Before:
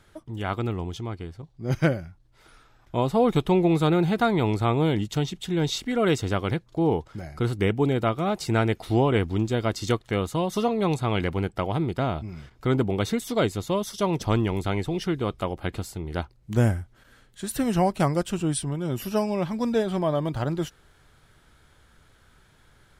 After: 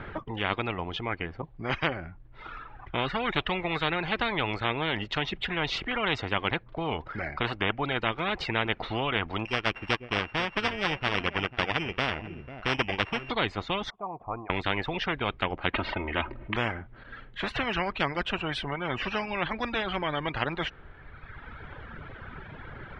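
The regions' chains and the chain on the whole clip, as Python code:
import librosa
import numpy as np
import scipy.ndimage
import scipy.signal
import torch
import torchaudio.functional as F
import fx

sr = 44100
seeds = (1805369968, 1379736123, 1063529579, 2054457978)

y = fx.chain(x, sr, fx.sample_sort(block=16),
    fx.echo_single(ms=496, db=-15.0),
    fx.upward_expand(threshold_db=-38.0, expansion=1.5), at=(9.45, 13.3))
y = fx.chain(y, sr, fx.formant_cascade(vowel='a'),
    fx.quant_float(bits=6), at=(13.9, 14.5))
y = fx.chain(y, sr, fx.lowpass(hz=3200.0, slope=24),
    fx.comb(ms=3.2, depth=0.84),
    fx.env_flatten(amount_pct=50), at=(15.73, 16.56))
y = fx.dereverb_blind(y, sr, rt60_s=1.4)
y = scipy.signal.sosfilt(scipy.signal.butter(4, 2500.0, 'lowpass', fs=sr, output='sos'), y)
y = fx.spectral_comp(y, sr, ratio=4.0)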